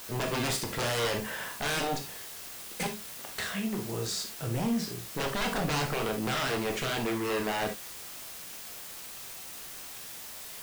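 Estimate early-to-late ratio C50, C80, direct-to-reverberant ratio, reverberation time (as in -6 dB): 9.5 dB, 20.0 dB, 3.5 dB, not exponential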